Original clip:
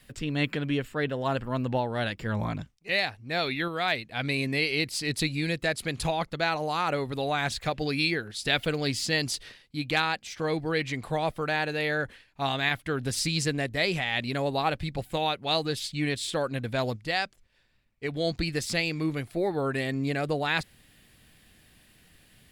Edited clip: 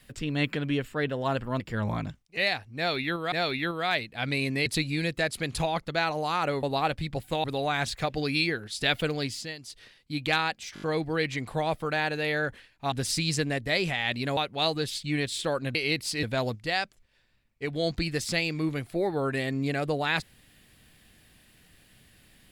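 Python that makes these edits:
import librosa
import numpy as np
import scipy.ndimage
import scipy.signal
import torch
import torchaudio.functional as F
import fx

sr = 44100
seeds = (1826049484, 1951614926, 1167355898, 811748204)

y = fx.edit(x, sr, fx.cut(start_s=1.6, length_s=0.52),
    fx.repeat(start_s=3.29, length_s=0.55, count=2),
    fx.move(start_s=4.63, length_s=0.48, to_s=16.64),
    fx.fade_down_up(start_s=8.72, length_s=1.04, db=-16.0, fade_s=0.49),
    fx.stutter(start_s=10.38, slice_s=0.02, count=5),
    fx.cut(start_s=12.48, length_s=0.52),
    fx.move(start_s=14.45, length_s=0.81, to_s=7.08), tone=tone)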